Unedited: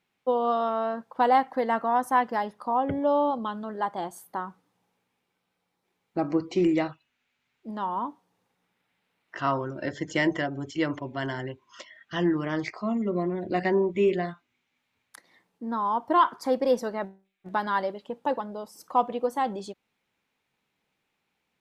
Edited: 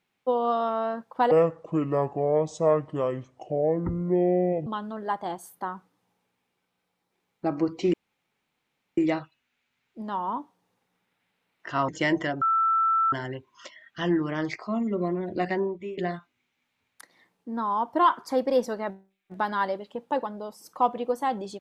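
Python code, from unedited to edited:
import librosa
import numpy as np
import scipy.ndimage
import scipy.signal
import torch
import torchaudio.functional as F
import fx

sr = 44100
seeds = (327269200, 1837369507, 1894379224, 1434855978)

y = fx.edit(x, sr, fx.speed_span(start_s=1.31, length_s=2.08, speed=0.62),
    fx.insert_room_tone(at_s=6.66, length_s=1.04),
    fx.cut(start_s=9.57, length_s=0.46),
    fx.bleep(start_s=10.56, length_s=0.71, hz=1330.0, db=-19.5),
    fx.fade_out_to(start_s=13.52, length_s=0.6, floor_db=-21.0), tone=tone)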